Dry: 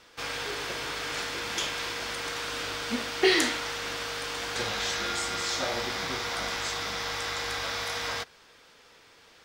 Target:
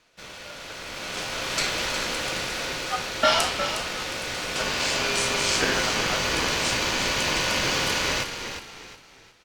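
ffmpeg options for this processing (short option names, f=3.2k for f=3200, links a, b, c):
-filter_complex "[0:a]aeval=exprs='val(0)*sin(2*PI*1000*n/s)':c=same,dynaudnorm=f=290:g=9:m=16dB,asplit=5[a][b][c][d][e];[b]adelay=360,afreqshift=-48,volume=-8.5dB[f];[c]adelay=720,afreqshift=-96,volume=-17.9dB[g];[d]adelay=1080,afreqshift=-144,volume=-27.2dB[h];[e]adelay=1440,afreqshift=-192,volume=-36.6dB[i];[a][f][g][h][i]amix=inputs=5:normalize=0,volume=-4.5dB"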